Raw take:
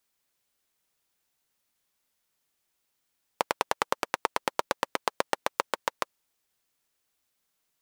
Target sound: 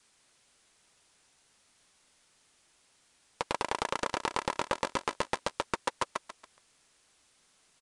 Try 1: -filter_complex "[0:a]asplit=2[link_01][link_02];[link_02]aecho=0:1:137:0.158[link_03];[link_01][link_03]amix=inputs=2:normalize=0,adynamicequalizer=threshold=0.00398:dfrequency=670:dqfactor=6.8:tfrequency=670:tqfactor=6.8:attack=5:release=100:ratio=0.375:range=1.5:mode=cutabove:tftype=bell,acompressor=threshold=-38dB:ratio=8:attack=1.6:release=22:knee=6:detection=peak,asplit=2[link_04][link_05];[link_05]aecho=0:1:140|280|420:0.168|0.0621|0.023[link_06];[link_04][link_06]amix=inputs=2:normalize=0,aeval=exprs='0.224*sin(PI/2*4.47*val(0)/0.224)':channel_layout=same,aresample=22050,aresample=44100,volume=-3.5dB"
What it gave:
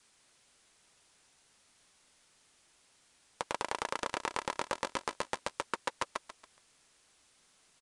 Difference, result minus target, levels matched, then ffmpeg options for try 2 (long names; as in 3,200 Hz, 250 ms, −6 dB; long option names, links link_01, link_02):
downward compressor: peak gain reduction +6 dB
-filter_complex "[0:a]asplit=2[link_01][link_02];[link_02]aecho=0:1:137:0.158[link_03];[link_01][link_03]amix=inputs=2:normalize=0,adynamicequalizer=threshold=0.00398:dfrequency=670:dqfactor=6.8:tfrequency=670:tqfactor=6.8:attack=5:release=100:ratio=0.375:range=1.5:mode=cutabove:tftype=bell,acompressor=threshold=-31dB:ratio=8:attack=1.6:release=22:knee=6:detection=peak,asplit=2[link_04][link_05];[link_05]aecho=0:1:140|280|420:0.168|0.0621|0.023[link_06];[link_04][link_06]amix=inputs=2:normalize=0,aeval=exprs='0.224*sin(PI/2*4.47*val(0)/0.224)':channel_layout=same,aresample=22050,aresample=44100,volume=-3.5dB"